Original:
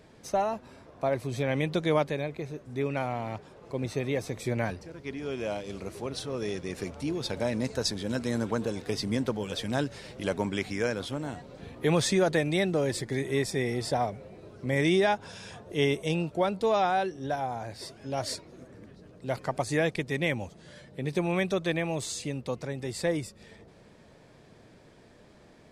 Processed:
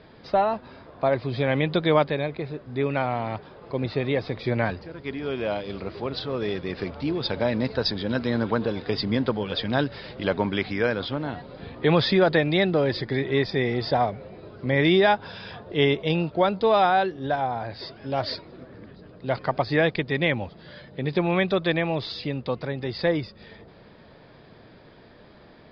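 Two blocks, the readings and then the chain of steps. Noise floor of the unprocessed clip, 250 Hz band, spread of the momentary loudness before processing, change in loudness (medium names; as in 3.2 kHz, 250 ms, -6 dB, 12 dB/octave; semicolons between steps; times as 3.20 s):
-55 dBFS, +4.5 dB, 13 LU, +5.0 dB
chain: rippled Chebyshev low-pass 5 kHz, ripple 3 dB; trim +7.5 dB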